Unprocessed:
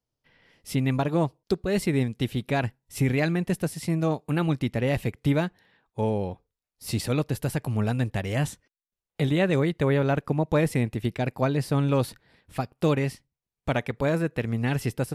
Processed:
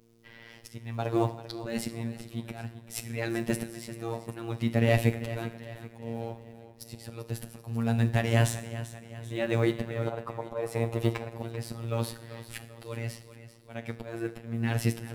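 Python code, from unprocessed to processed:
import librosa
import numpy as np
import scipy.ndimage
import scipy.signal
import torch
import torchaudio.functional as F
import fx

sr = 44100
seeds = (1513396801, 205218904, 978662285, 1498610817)

p1 = fx.law_mismatch(x, sr, coded='mu')
p2 = fx.graphic_eq(p1, sr, hz=(250, 500, 1000, 2000), db=(-11, 10, 12, -4), at=(10.07, 11.29))
p3 = fx.auto_swell(p2, sr, attack_ms=631.0)
p4 = fx.dmg_buzz(p3, sr, base_hz=60.0, harmonics=8, level_db=-65.0, tilt_db=-1, odd_only=False)
p5 = p4 + fx.echo_feedback(p4, sr, ms=390, feedback_pct=48, wet_db=-14, dry=0)
p6 = fx.rev_double_slope(p5, sr, seeds[0], early_s=0.59, late_s=2.4, knee_db=-18, drr_db=9.0)
p7 = fx.robotise(p6, sr, hz=115.0)
y = p7 * librosa.db_to_amplitude(3.5)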